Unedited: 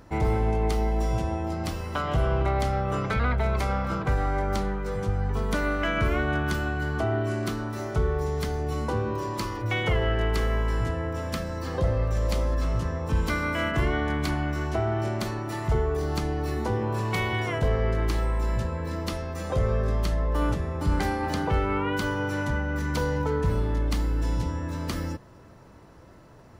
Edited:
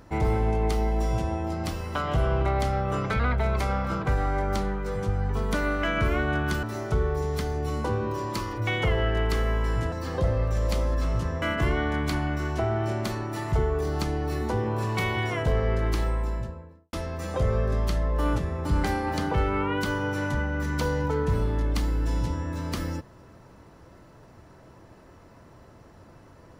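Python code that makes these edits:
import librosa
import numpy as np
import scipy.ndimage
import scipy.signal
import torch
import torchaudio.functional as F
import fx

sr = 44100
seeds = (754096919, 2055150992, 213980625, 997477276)

y = fx.studio_fade_out(x, sr, start_s=18.14, length_s=0.95)
y = fx.edit(y, sr, fx.cut(start_s=6.63, length_s=1.04),
    fx.cut(start_s=10.96, length_s=0.56),
    fx.cut(start_s=13.02, length_s=0.56), tone=tone)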